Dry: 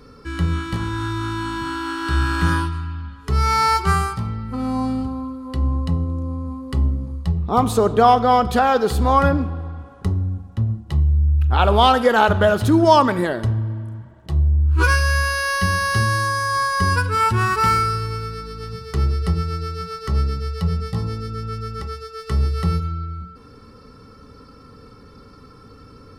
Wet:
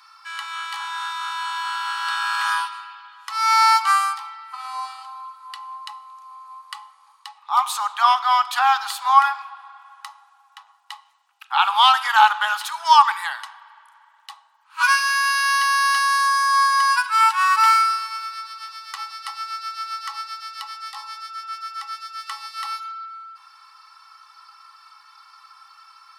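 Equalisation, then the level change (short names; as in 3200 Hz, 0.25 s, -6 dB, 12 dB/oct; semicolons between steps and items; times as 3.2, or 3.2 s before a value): rippled Chebyshev high-pass 810 Hz, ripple 3 dB; +4.5 dB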